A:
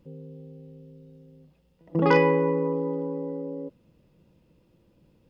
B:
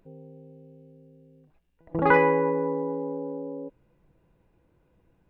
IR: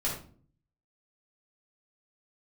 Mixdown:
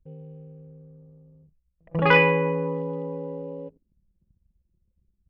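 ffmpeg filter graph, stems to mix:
-filter_complex "[0:a]equalizer=frequency=62:width=0.61:gain=14,volume=-10.5dB,asplit=2[link_01][link_02];[link_02]volume=-17dB[link_03];[1:a]adynamicequalizer=threshold=0.0126:dfrequency=1300:dqfactor=0.94:tfrequency=1300:tqfactor=0.94:attack=5:release=100:ratio=0.375:range=2.5:mode=cutabove:tftype=bell,volume=-1.5dB[link_04];[2:a]atrim=start_sample=2205[link_05];[link_03][link_05]afir=irnorm=-1:irlink=0[link_06];[link_01][link_04][link_06]amix=inputs=3:normalize=0,anlmdn=0.00398,equalizer=frequency=2800:width_type=o:width=1.3:gain=14.5"

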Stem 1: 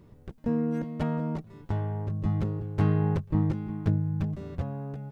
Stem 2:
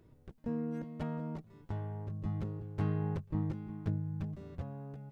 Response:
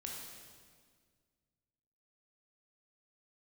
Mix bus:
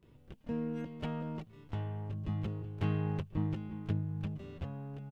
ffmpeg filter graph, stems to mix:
-filter_complex "[0:a]aeval=exprs='(tanh(79.4*val(0)+0.5)-tanh(0.5))/79.4':channel_layout=same,volume=-15.5dB[link_01];[1:a]equalizer=frequency=2900:width=2:gain=11,adelay=28,volume=0.5dB[link_02];[link_01][link_02]amix=inputs=2:normalize=0"

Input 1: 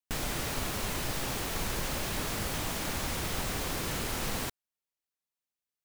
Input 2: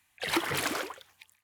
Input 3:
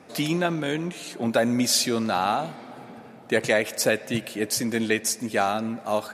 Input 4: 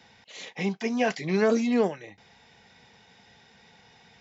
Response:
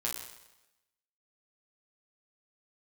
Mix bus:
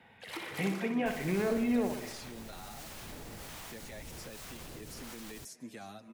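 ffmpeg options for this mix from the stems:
-filter_complex "[0:a]acrossover=split=580[link_01][link_02];[link_01]aeval=exprs='val(0)*(1-0.7/2+0.7/2*cos(2*PI*1.3*n/s))':channel_layout=same[link_03];[link_02]aeval=exprs='val(0)*(1-0.7/2-0.7/2*cos(2*PI*1.3*n/s))':channel_layout=same[link_04];[link_03][link_04]amix=inputs=2:normalize=0,adelay=950,volume=-4.5dB[link_05];[1:a]volume=-14.5dB,asplit=2[link_06][link_07];[link_07]volume=-7dB[link_08];[2:a]dynaudnorm=framelen=140:gausssize=9:maxgain=11.5dB,asplit=2[link_09][link_10];[link_10]adelay=7.1,afreqshift=-2[link_11];[link_09][link_11]amix=inputs=2:normalize=1,adelay=400,volume=-18.5dB[link_12];[3:a]lowpass=frequency=2900:width=0.5412,lowpass=frequency=2900:width=1.3066,alimiter=limit=-21.5dB:level=0:latency=1:release=197,volume=-2.5dB,asplit=2[link_13][link_14];[link_14]volume=-8dB[link_15];[link_05][link_12]amix=inputs=2:normalize=0,acrossover=split=280|3600[link_16][link_17][link_18];[link_16]acompressor=threshold=-45dB:ratio=4[link_19];[link_17]acompressor=threshold=-47dB:ratio=4[link_20];[link_18]acompressor=threshold=-47dB:ratio=4[link_21];[link_19][link_20][link_21]amix=inputs=3:normalize=0,alimiter=level_in=12dB:limit=-24dB:level=0:latency=1:release=34,volume=-12dB,volume=0dB[link_22];[link_08][link_15]amix=inputs=2:normalize=0,aecho=0:1:62|124|186|248|310|372|434|496|558:1|0.59|0.348|0.205|0.121|0.0715|0.0422|0.0249|0.0147[link_23];[link_06][link_13][link_22][link_23]amix=inputs=4:normalize=0"

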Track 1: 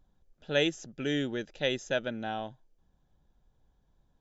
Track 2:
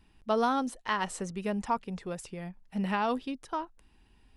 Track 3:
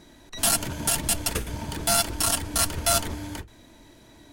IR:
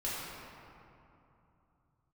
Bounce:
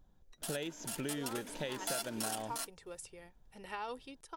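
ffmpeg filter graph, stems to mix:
-filter_complex "[0:a]highshelf=frequency=3200:gain=-9.5,volume=2dB,asplit=2[link_01][link_02];[1:a]equalizer=frequency=190:width_type=o:width=0.52:gain=-12.5,aecho=1:1:2.2:0.38,adelay=800,volume=-11dB[link_03];[2:a]highpass=frequency=240:width=0.5412,highpass=frequency=240:width=1.3066,volume=-10.5dB,afade=type=in:start_time=0.82:duration=0.65:silence=0.375837,afade=type=out:start_time=2.27:duration=0.55:silence=0.281838[link_04];[link_02]apad=whole_len=190716[link_05];[link_04][link_05]sidechaingate=range=-33dB:threshold=-55dB:ratio=16:detection=peak[link_06];[link_01][link_03]amix=inputs=2:normalize=0,highshelf=frequency=5200:gain=11,acompressor=threshold=-33dB:ratio=6,volume=0dB[link_07];[link_06][link_07]amix=inputs=2:normalize=0,acompressor=threshold=-36dB:ratio=2.5"

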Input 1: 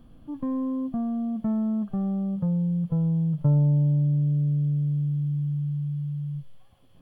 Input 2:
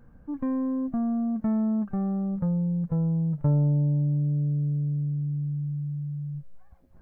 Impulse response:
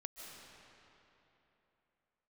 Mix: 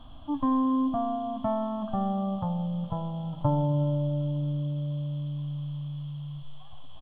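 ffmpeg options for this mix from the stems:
-filter_complex "[0:a]firequalizer=gain_entry='entry(120,0);entry(170,-17);entry(280,-1);entry(430,-18);entry(620,6);entry(1000,10);entry(1600,-2);entry(2300,-3);entry(3300,13);entry(5100,-13)':delay=0.05:min_phase=1,volume=2dB,asplit=2[link_01][link_02];[link_02]volume=-3.5dB[link_03];[1:a]adelay=11,volume=-8.5dB[link_04];[2:a]atrim=start_sample=2205[link_05];[link_03][link_05]afir=irnorm=-1:irlink=0[link_06];[link_01][link_04][link_06]amix=inputs=3:normalize=0"

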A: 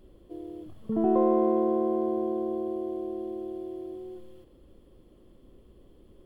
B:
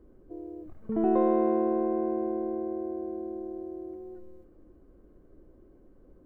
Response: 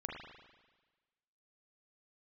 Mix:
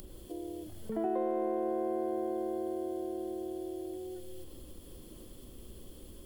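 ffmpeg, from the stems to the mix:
-filter_complex "[0:a]bass=frequency=250:gain=3,treble=frequency=4000:gain=12,acompressor=mode=upward:threshold=-29dB:ratio=2.5,volume=-12.5dB,asplit=2[link_01][link_02];[link_02]volume=-3dB[link_03];[1:a]lowshelf=frequency=490:gain=-7.5,volume=-1,volume=-1dB[link_04];[2:a]atrim=start_sample=2205[link_05];[link_03][link_05]afir=irnorm=-1:irlink=0[link_06];[link_01][link_04][link_06]amix=inputs=3:normalize=0,highshelf=frequency=2200:gain=11,acrossover=split=410|1100[link_07][link_08][link_09];[link_07]acompressor=threshold=-38dB:ratio=4[link_10];[link_08]acompressor=threshold=-33dB:ratio=4[link_11];[link_09]acompressor=threshold=-55dB:ratio=4[link_12];[link_10][link_11][link_12]amix=inputs=3:normalize=0"

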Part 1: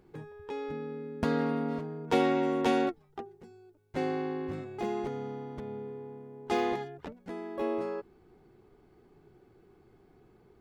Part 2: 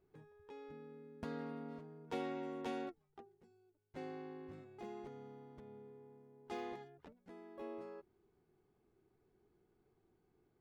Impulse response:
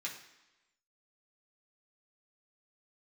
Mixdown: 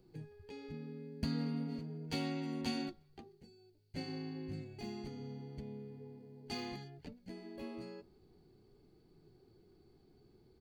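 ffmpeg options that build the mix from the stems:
-filter_complex "[0:a]equalizer=frequency=1400:width_type=o:width=2.4:gain=-14,acrossover=split=350|3000[link_01][link_02][link_03];[link_02]acompressor=threshold=-46dB:ratio=6[link_04];[link_01][link_04][link_03]amix=inputs=3:normalize=0,flanger=delay=6:depth=8.5:regen=-57:speed=0.44:shape=sinusoidal,volume=1.5dB[link_05];[1:a]lowpass=frequency=4500:width_type=q:width=13,adelay=0.5,volume=0dB,asplit=2[link_06][link_07];[link_07]volume=-18dB[link_08];[2:a]atrim=start_sample=2205[link_09];[link_08][link_09]afir=irnorm=-1:irlink=0[link_10];[link_05][link_06][link_10]amix=inputs=3:normalize=0"

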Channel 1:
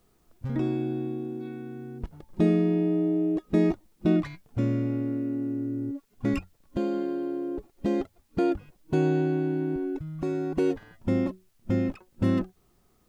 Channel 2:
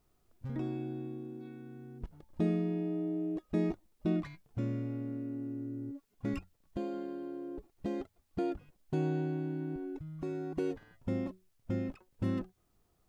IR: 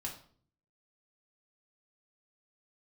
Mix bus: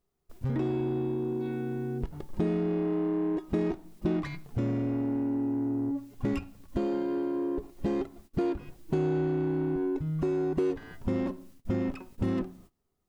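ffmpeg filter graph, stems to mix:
-filter_complex "[0:a]asoftclip=type=tanh:threshold=-31.5dB,volume=0dB,asplit=2[link_01][link_02];[link_02]volume=-5dB[link_03];[1:a]equalizer=frequency=390:width=5.7:gain=9.5,acontrast=69,volume=2.5dB,asplit=2[link_04][link_05];[link_05]volume=-23.5dB[link_06];[2:a]atrim=start_sample=2205[link_07];[link_03][link_06]amix=inputs=2:normalize=0[link_08];[link_08][link_07]afir=irnorm=-1:irlink=0[link_09];[link_01][link_04][link_09]amix=inputs=3:normalize=0,agate=range=-21dB:threshold=-49dB:ratio=16:detection=peak,acompressor=threshold=-30dB:ratio=2.5"

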